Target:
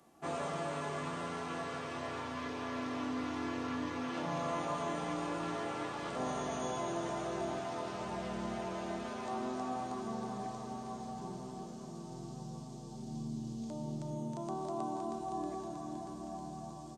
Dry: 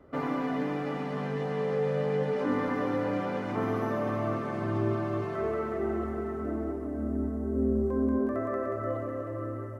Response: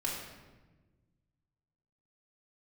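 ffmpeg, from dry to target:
-filter_complex "[0:a]aderivative,asplit=2[a][b];[b]adelay=1516,volume=-12dB,highshelf=f=4k:g=-34.1[c];[a][c]amix=inputs=2:normalize=0,asetrate=25442,aresample=44100,volume=13.5dB"

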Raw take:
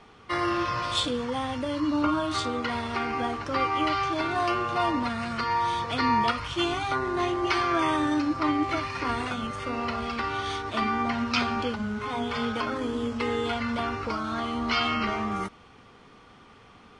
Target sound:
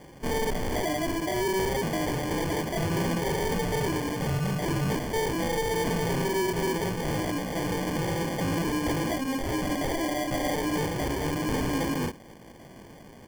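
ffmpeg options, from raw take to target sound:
-af "highpass=f=130:w=0.5412,highpass=f=130:w=1.3066,asetrate=56448,aresample=44100,aresample=11025,asoftclip=type=hard:threshold=-24dB,aresample=44100,flanger=delay=15.5:depth=6.5:speed=2.5,acrusher=samples=33:mix=1:aa=0.000001,asoftclip=type=tanh:threshold=-31.5dB,asuperstop=centerf=3800:order=8:qfactor=7.2,volume=8dB"

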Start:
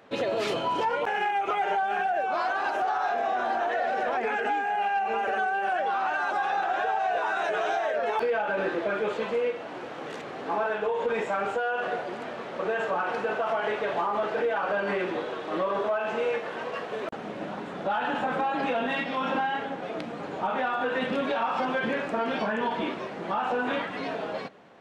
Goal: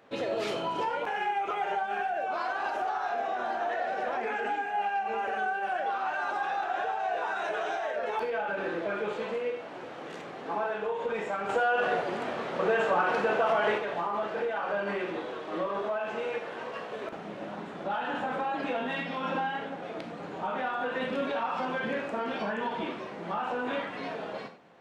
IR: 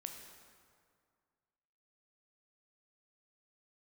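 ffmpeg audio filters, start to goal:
-filter_complex "[0:a]asettb=1/sr,asplit=3[a][b][c];[a]atrim=end=11.494[d];[b]atrim=start=11.49:end=13.78,asetpts=PTS-STARTPTS,afade=t=in:d=0.004:c=qsin,afade=t=out:st=2.286:d=0.004:c=qsin,acontrast=67[e];[c]atrim=start=13.776[f];[d][e]acrossfade=d=0.004:c1=hsin:c2=qsin[g];[g][f]acrossfade=d=0.004:c1=qsin:c2=hsin[h];[1:a]atrim=start_sample=2205,atrim=end_sample=4410[i];[h][i]afir=irnorm=-1:irlink=0"

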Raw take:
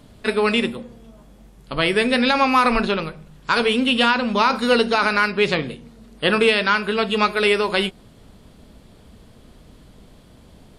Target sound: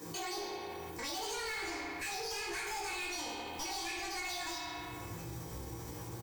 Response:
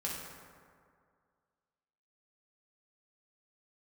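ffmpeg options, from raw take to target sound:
-filter_complex "[0:a]aemphasis=mode=production:type=75fm,bandreject=f=1.6k:w=9[a];[1:a]atrim=start_sample=2205,asetrate=48510,aresample=44100[b];[a][b]afir=irnorm=-1:irlink=0,acompressor=threshold=-33dB:ratio=4,highpass=61,asplit=2[c][d];[d]adelay=30,volume=-3dB[e];[c][e]amix=inputs=2:normalize=0,asetrate=76440,aresample=44100,asoftclip=type=hard:threshold=-29dB,alimiter=level_in=11.5dB:limit=-24dB:level=0:latency=1:release=35,volume=-11.5dB,asubboost=boost=4:cutoff=110"

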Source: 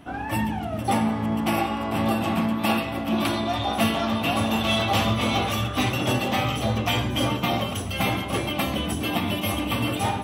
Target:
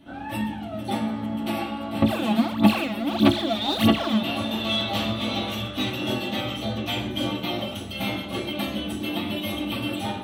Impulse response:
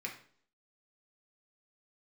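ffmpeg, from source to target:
-filter_complex "[1:a]atrim=start_sample=2205,asetrate=74970,aresample=44100[a];[0:a][a]afir=irnorm=-1:irlink=0,asettb=1/sr,asplit=3[b][c][d];[b]atrim=end=2.024[e];[c]atrim=start=2.02:end=4.23,asetpts=PTS-STARTPTS,afade=t=in:d=0.004:c=qsin,afade=t=out:st=2.206:d=0.004:c=qsin,aphaser=in_gain=1:out_gain=1:delay=4.9:decay=0.79:speed=1.6:type=sinusoidal[f];[d]atrim=start=4.226[g];[e][f]acrossfade=d=0.004:c1=hsin:c2=qsin[h];[h][g]acrossfade=d=0.004:c1=qsin:c2=hsin,volume=1dB"

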